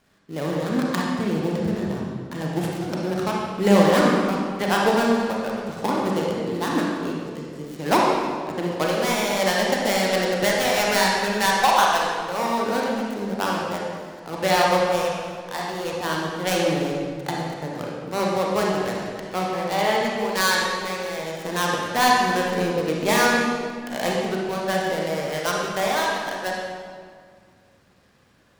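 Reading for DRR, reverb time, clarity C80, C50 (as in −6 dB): −3.0 dB, 2.1 s, 1.0 dB, −1.5 dB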